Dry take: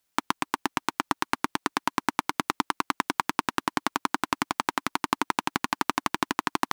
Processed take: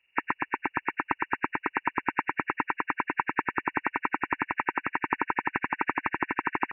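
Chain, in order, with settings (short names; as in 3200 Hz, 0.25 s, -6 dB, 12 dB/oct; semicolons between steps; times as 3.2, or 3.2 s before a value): nonlinear frequency compression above 1500 Hz 4:1; recorder AGC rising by 6.6 dB/s; comb 2.2 ms, depth 35%; gain -2.5 dB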